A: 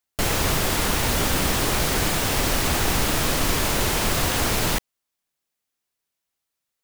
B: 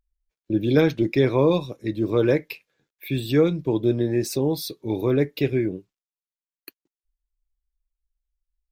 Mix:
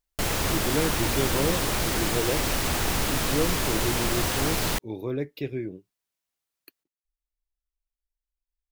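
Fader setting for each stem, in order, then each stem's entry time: −4.0, −9.0 decibels; 0.00, 0.00 seconds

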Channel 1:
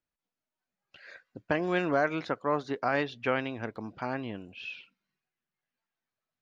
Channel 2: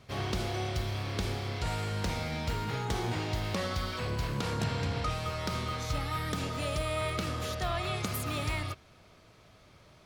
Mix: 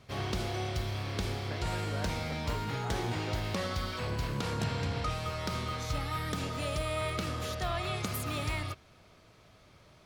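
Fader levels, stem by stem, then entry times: −16.0, −1.0 decibels; 0.00, 0.00 seconds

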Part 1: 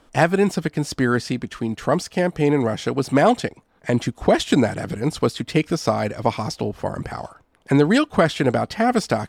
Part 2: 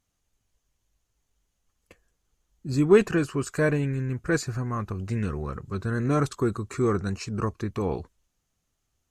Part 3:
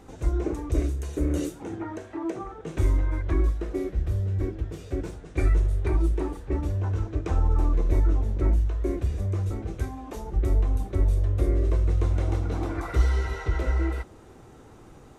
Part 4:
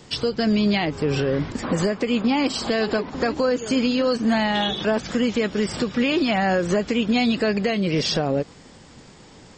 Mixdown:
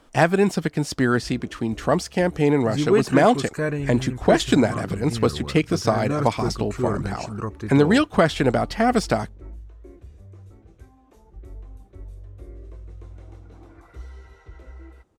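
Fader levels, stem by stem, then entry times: −0.5 dB, −1.5 dB, −17.5 dB, muted; 0.00 s, 0.00 s, 1.00 s, muted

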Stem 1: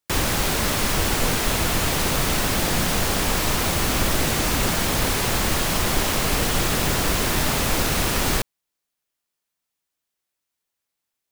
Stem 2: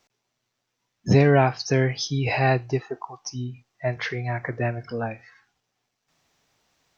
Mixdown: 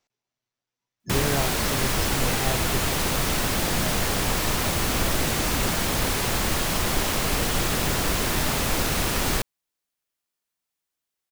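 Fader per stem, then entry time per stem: −2.5, −10.5 decibels; 1.00, 0.00 seconds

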